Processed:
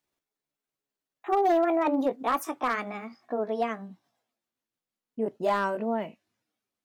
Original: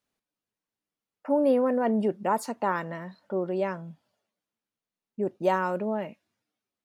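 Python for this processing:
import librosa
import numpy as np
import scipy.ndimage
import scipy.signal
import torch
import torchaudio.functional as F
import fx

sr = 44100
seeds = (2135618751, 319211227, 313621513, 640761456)

y = fx.pitch_glide(x, sr, semitones=6.5, runs='ending unshifted')
y = np.clip(y, -10.0 ** (-18.5 / 20.0), 10.0 ** (-18.5 / 20.0))
y = y * 10.0 ** (1.0 / 20.0)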